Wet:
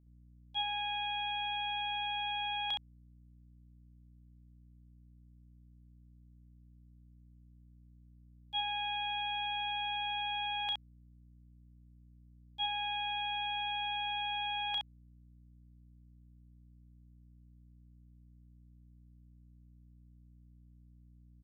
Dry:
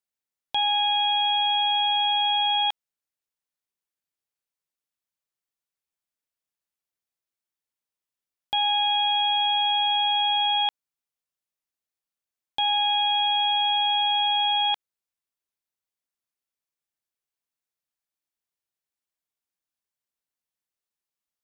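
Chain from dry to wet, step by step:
high-shelf EQ 2,200 Hz +7.5 dB
downward expander −9 dBFS
mains hum 60 Hz, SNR 28 dB
parametric band 150 Hz +5.5 dB 0.32 octaves
loudspeakers that aren't time-aligned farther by 12 metres −10 dB, 23 metres −4 dB
level +1.5 dB

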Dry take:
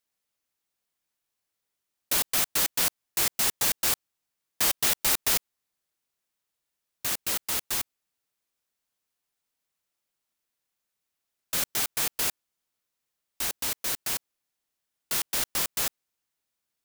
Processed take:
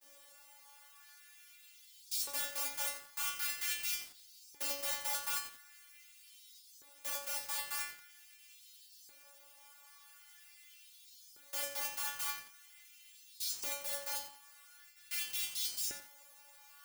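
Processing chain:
compressor on every frequency bin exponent 0.4
noise gate with hold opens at −33 dBFS
stiff-string resonator 280 Hz, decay 0.57 s, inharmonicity 0.002
auto-filter high-pass saw up 0.44 Hz 380–5,400 Hz
feedback echo at a low word length 89 ms, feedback 55%, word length 7 bits, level −9.5 dB

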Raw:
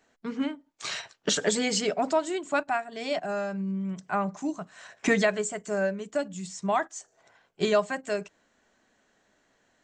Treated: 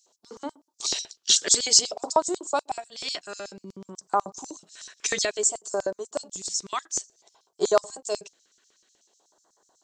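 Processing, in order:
all-pass phaser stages 2, 0.55 Hz, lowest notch 770–2,400 Hz
octave-band graphic EQ 250/500/1,000/2,000/4,000 Hz −11/−8/+9/−5/+4 dB
auto-filter high-pass square 8.1 Hz 380–5,600 Hz
level +5.5 dB

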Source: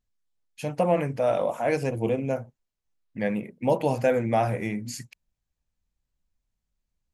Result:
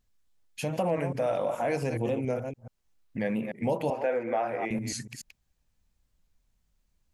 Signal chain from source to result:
delay that plays each chunk backwards 141 ms, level −10 dB
0:03.90–0:04.71: three-way crossover with the lows and the highs turned down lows −24 dB, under 300 Hz, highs −19 dB, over 3,000 Hz
in parallel at +2 dB: brickwall limiter −20.5 dBFS, peak gain reduction 10.5 dB
on the sum: downward compressor 1.5 to 1, threshold −41 dBFS, peak gain reduction 10 dB
wow of a warped record 45 rpm, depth 100 cents

